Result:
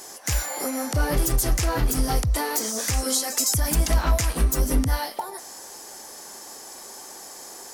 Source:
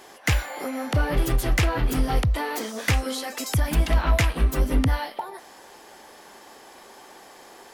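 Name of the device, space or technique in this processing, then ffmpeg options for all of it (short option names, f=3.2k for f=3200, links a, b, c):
over-bright horn tweeter: -af "highshelf=f=4.4k:t=q:w=1.5:g=11,alimiter=limit=-13.5dB:level=0:latency=1:release=105,volume=1.5dB"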